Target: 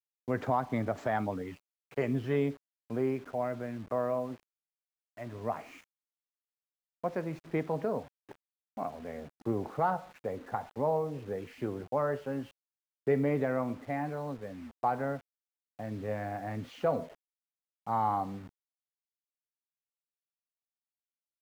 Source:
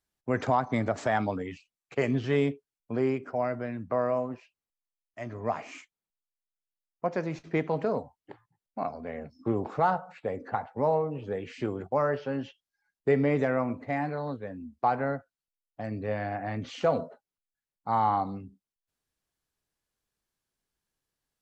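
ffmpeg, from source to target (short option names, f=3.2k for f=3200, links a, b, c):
-af "acrusher=bits=7:mix=0:aa=0.000001,highshelf=f=3.3k:g=-11,volume=-3.5dB"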